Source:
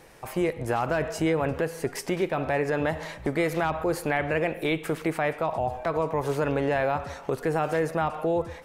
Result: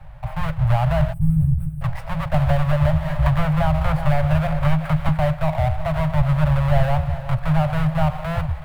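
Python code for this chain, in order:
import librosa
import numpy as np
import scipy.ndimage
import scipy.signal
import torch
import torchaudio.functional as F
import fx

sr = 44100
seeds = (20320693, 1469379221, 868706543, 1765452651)

y = fx.halfwave_hold(x, sr)
y = scipy.signal.sosfilt(scipy.signal.cheby1(5, 1.0, [160.0, 570.0], 'bandstop', fs=sr, output='sos'), y)
y = fx.peak_eq(y, sr, hz=6000.0, db=-11.5, octaves=1.2)
y = fx.echo_feedback(y, sr, ms=374, feedback_pct=54, wet_db=-14)
y = fx.spec_box(y, sr, start_s=1.13, length_s=0.69, low_hz=220.0, high_hz=7800.0, gain_db=-29)
y = fx.riaa(y, sr, side='playback')
y = fx.band_squash(y, sr, depth_pct=100, at=(2.34, 5.09))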